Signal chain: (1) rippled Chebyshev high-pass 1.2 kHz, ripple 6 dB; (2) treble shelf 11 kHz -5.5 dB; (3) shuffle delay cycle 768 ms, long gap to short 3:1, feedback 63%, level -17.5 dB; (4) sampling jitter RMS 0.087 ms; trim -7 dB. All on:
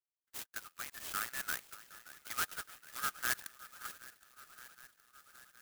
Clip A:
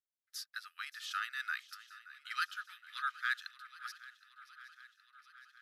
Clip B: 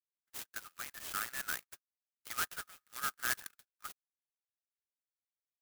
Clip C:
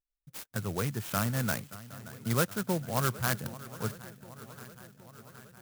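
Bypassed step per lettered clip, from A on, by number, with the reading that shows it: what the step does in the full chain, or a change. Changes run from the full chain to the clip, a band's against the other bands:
4, 8 kHz band -13.0 dB; 3, momentary loudness spread change -4 LU; 1, 125 Hz band +26.0 dB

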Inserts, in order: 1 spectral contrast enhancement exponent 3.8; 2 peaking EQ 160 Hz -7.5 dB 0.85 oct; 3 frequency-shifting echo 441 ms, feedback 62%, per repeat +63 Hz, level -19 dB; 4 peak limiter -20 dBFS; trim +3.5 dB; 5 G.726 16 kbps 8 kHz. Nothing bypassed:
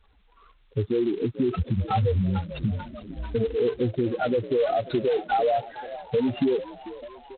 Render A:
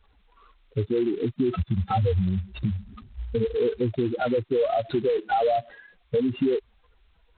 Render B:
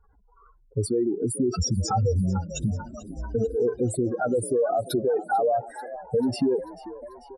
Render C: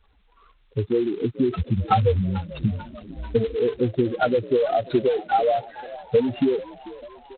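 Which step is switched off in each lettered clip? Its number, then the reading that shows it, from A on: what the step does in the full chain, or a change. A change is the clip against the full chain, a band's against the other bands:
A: 3, momentary loudness spread change -7 LU; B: 5, 4 kHz band +3.5 dB; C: 4, crest factor change +8.0 dB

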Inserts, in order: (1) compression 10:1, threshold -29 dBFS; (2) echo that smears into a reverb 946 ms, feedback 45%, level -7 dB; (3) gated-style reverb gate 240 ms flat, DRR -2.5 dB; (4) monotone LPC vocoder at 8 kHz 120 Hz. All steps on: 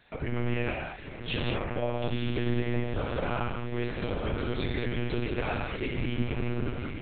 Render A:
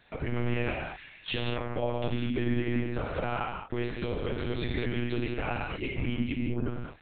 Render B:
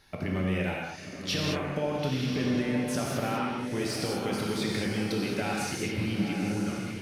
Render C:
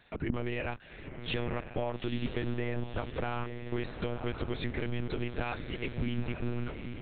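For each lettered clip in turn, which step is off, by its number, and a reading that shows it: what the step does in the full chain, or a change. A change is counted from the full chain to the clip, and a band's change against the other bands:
2, momentary loudness spread change +1 LU; 4, 4 kHz band +3.5 dB; 3, loudness change -4.0 LU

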